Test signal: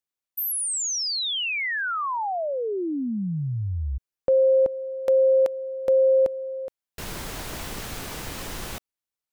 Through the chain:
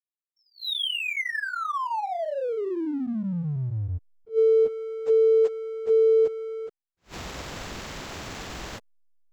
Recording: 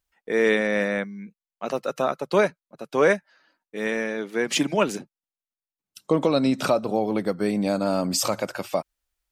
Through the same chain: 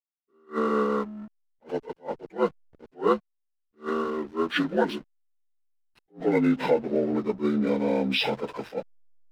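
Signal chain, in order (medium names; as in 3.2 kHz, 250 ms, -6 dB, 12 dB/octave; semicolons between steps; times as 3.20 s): frequency axis rescaled in octaves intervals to 77%; hysteresis with a dead band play -38 dBFS; attacks held to a fixed rise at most 290 dB/s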